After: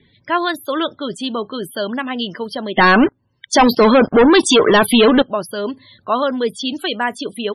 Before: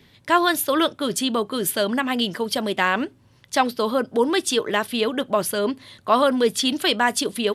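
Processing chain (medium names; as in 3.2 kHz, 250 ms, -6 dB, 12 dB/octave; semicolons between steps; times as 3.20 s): de-esser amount 45%; 2.77–5.22 s: waveshaping leveller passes 5; loudest bins only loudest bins 64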